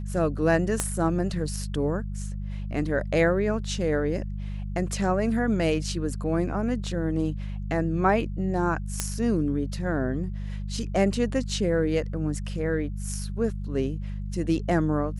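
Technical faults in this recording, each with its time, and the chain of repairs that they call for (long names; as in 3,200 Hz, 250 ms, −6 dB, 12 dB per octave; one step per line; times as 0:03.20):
mains hum 50 Hz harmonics 4 −32 dBFS
0:00.80: click −10 dBFS
0:09.00: click −9 dBFS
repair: click removal
hum removal 50 Hz, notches 4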